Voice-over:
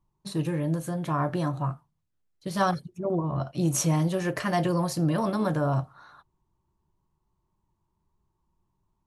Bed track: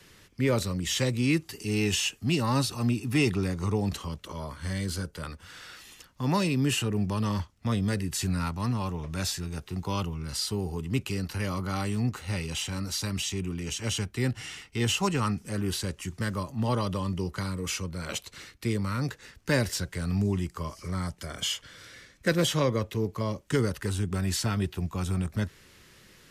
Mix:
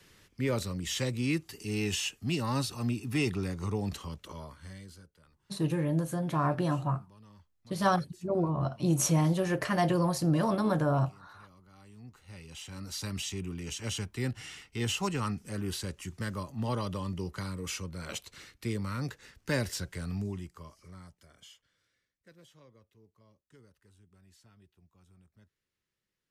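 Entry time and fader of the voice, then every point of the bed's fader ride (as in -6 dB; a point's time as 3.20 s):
5.25 s, -1.5 dB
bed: 4.32 s -5 dB
5.30 s -27.5 dB
11.70 s -27.5 dB
13.06 s -5 dB
19.95 s -5 dB
22.18 s -33 dB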